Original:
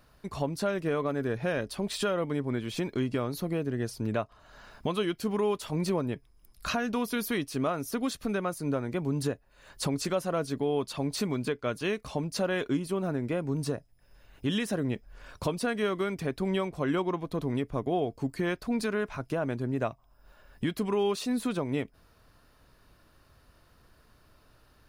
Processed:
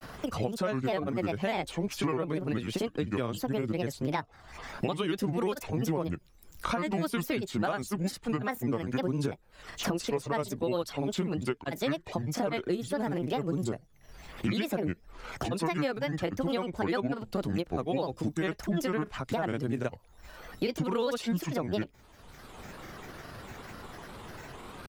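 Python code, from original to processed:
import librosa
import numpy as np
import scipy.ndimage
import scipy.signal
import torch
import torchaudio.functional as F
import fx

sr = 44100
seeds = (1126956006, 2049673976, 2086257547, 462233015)

y = fx.granulator(x, sr, seeds[0], grain_ms=100.0, per_s=20.0, spray_ms=33.0, spread_st=7)
y = fx.band_squash(y, sr, depth_pct=70)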